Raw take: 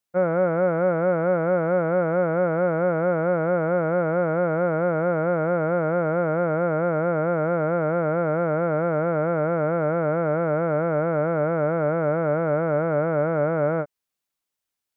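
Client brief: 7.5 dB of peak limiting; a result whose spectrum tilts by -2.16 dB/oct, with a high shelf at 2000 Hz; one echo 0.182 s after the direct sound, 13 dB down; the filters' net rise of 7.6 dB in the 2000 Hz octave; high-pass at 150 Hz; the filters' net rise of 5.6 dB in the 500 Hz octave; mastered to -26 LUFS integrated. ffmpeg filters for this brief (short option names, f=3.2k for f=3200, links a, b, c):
-af "highpass=150,equalizer=f=500:t=o:g=5.5,highshelf=f=2k:g=6,equalizer=f=2k:t=o:g=8,alimiter=limit=-13.5dB:level=0:latency=1,aecho=1:1:182:0.224,volume=-4.5dB"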